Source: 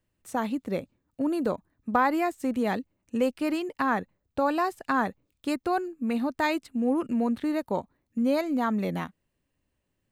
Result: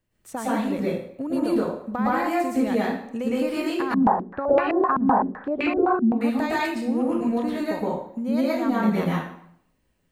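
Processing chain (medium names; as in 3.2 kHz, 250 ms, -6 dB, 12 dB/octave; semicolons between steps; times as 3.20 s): compression, threshold -27 dBFS, peak gain reduction 9 dB; reverberation RT60 0.65 s, pre-delay 106 ms, DRR -7.5 dB; 3.94–6.21 s: step-sequenced low-pass 7.8 Hz 220–2400 Hz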